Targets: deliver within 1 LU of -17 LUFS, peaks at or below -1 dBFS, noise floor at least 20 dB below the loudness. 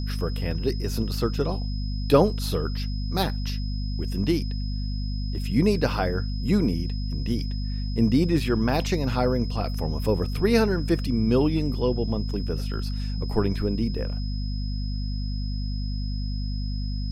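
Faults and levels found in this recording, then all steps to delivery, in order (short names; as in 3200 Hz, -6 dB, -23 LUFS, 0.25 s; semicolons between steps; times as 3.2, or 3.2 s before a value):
hum 50 Hz; harmonics up to 250 Hz; hum level -26 dBFS; steady tone 5100 Hz; tone level -41 dBFS; loudness -26.5 LUFS; peak -5.5 dBFS; loudness target -17.0 LUFS
-> de-hum 50 Hz, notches 5; notch 5100 Hz, Q 30; gain +9.5 dB; limiter -1 dBFS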